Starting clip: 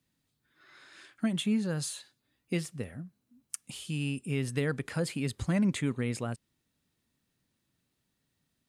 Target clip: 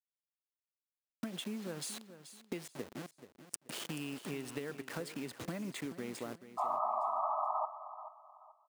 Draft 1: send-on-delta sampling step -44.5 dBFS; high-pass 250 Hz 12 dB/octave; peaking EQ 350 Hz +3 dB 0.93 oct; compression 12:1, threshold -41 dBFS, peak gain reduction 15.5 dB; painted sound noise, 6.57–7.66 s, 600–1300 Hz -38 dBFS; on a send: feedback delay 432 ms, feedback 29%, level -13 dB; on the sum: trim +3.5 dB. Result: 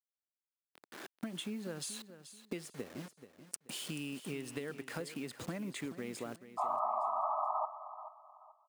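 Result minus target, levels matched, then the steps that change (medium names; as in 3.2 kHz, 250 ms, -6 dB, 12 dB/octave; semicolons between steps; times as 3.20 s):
send-on-delta sampling: distortion -5 dB
change: send-on-delta sampling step -38 dBFS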